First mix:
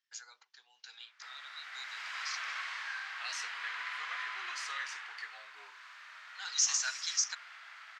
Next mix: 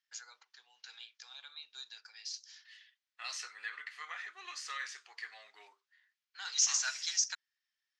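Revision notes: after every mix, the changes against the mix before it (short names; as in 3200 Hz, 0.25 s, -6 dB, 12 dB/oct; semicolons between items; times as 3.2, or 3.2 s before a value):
background: muted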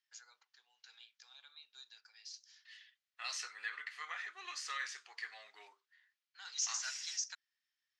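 first voice -8.0 dB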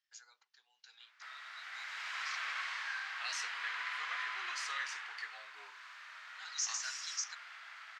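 background: unmuted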